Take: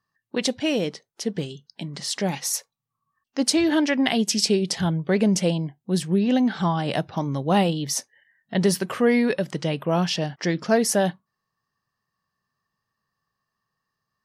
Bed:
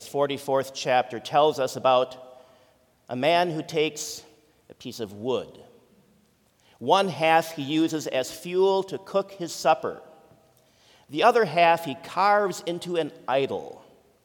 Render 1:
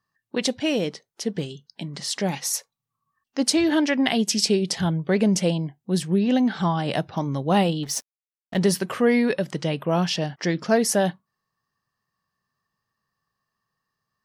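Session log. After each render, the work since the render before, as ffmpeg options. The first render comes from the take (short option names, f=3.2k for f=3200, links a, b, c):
-filter_complex "[0:a]asettb=1/sr,asplit=3[a][b][c];[a]atrim=end=7.834[d];[b]atrim=start=7.83:end=8.59,asetpts=PTS-STARTPTS,afade=t=in:d=0.004:c=qsin,afade=t=out:st=0.756:d=0.004:c=qsin,aeval=exprs='sgn(val(0))*max(abs(val(0))-0.01,0)':c=same[e];[c]atrim=start=8.586[f];[d][e]acrossfade=d=0.004:c1=hsin:c2=qsin[g];[g][f]acrossfade=d=0.004:c1=qsin:c2=hsin"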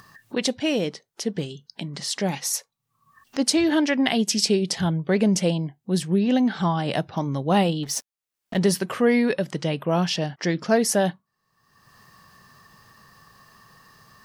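-af "acompressor=mode=upward:threshold=-30dB:ratio=2.5"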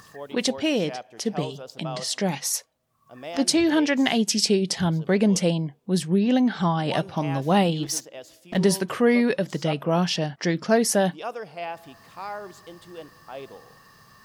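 -filter_complex "[1:a]volume=-14.5dB[a];[0:a][a]amix=inputs=2:normalize=0"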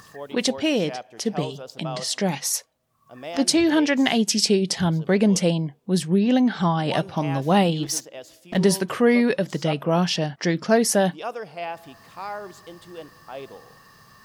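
-af "volume=1.5dB"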